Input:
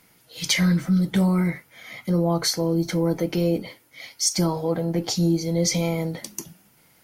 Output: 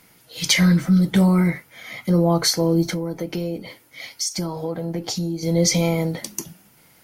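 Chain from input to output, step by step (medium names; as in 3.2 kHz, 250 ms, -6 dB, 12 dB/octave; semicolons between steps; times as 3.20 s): 2.87–5.43 s: compression, threshold -27 dBFS, peak gain reduction 10 dB; trim +4 dB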